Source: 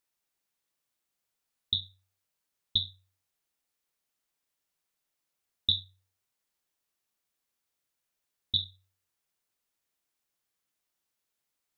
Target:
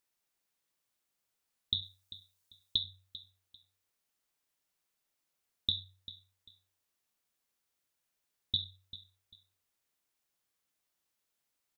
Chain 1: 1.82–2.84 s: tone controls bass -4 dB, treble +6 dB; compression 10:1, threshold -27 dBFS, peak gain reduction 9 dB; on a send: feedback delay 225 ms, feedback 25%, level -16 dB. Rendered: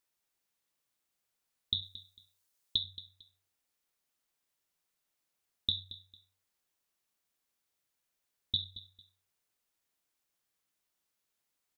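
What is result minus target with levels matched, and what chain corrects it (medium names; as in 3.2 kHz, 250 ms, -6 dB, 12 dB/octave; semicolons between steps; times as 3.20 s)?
echo 169 ms early
1.82–2.84 s: tone controls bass -4 dB, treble +6 dB; compression 10:1, threshold -27 dBFS, peak gain reduction 9 dB; on a send: feedback delay 394 ms, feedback 25%, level -16 dB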